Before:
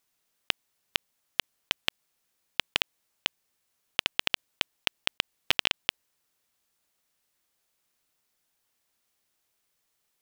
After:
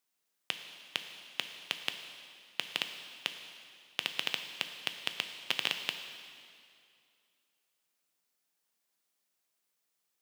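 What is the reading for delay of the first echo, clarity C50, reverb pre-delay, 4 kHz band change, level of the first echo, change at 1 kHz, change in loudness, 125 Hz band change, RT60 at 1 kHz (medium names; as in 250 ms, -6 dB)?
no echo, 8.0 dB, 4 ms, -5.5 dB, no echo, -6.0 dB, -6.0 dB, -9.5 dB, 2.4 s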